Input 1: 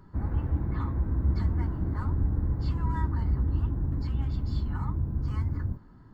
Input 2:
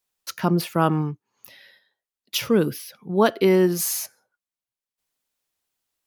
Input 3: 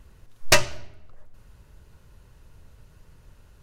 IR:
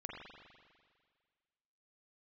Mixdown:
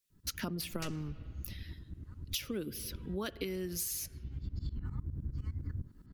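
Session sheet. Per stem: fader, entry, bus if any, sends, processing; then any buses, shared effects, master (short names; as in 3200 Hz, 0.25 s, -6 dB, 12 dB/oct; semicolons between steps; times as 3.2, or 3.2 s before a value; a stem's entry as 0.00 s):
+2.0 dB, 0.10 s, no send, tremolo saw up 9.8 Hz, depth 90%; auto duck -16 dB, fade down 0.25 s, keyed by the second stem
-8.5 dB, 0.00 s, send -16.5 dB, harmonic-percussive split percussive +9 dB
-15.5 dB, 0.30 s, send -15.5 dB, dry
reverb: on, RT60 1.8 s, pre-delay 41 ms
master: bell 870 Hz -14.5 dB 1.4 oct; compressor 10:1, threshold -34 dBFS, peak gain reduction 14.5 dB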